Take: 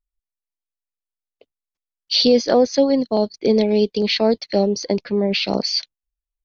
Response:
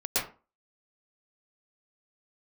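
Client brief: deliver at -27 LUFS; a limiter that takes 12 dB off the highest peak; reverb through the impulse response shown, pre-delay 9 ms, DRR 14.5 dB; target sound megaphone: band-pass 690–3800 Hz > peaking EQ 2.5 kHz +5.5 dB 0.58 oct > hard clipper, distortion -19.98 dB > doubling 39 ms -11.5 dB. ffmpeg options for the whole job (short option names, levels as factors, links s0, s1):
-filter_complex "[0:a]alimiter=limit=0.158:level=0:latency=1,asplit=2[s0][s1];[1:a]atrim=start_sample=2205,adelay=9[s2];[s1][s2]afir=irnorm=-1:irlink=0,volume=0.0631[s3];[s0][s3]amix=inputs=2:normalize=0,highpass=690,lowpass=3800,equalizer=f=2500:t=o:w=0.58:g=5.5,asoftclip=type=hard:threshold=0.0944,asplit=2[s4][s5];[s5]adelay=39,volume=0.266[s6];[s4][s6]amix=inputs=2:normalize=0,volume=1.41"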